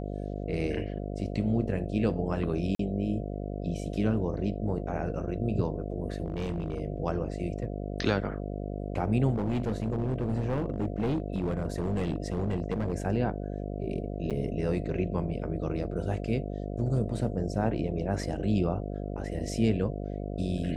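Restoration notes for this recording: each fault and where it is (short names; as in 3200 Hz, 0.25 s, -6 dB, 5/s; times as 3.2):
buzz 50 Hz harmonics 14 -35 dBFS
2.75–2.79 gap 43 ms
6.26–6.8 clipped -27 dBFS
9.33–12.93 clipped -24.5 dBFS
14.3–14.31 gap 7.3 ms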